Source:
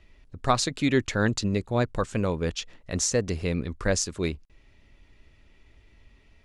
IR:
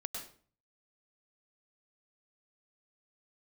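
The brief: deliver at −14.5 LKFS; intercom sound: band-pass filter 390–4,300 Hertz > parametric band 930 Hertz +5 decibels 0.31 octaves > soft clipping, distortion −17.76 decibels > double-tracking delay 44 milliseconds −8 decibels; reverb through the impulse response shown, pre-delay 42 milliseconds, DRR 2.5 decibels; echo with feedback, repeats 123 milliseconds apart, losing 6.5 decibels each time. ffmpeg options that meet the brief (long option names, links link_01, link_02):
-filter_complex "[0:a]aecho=1:1:123|246|369|492|615|738:0.473|0.222|0.105|0.0491|0.0231|0.0109,asplit=2[link_01][link_02];[1:a]atrim=start_sample=2205,adelay=42[link_03];[link_02][link_03]afir=irnorm=-1:irlink=0,volume=-2dB[link_04];[link_01][link_04]amix=inputs=2:normalize=0,highpass=390,lowpass=4300,equalizer=frequency=930:width_type=o:width=0.31:gain=5,asoftclip=threshold=-13.5dB,asplit=2[link_05][link_06];[link_06]adelay=44,volume=-8dB[link_07];[link_05][link_07]amix=inputs=2:normalize=0,volume=13dB"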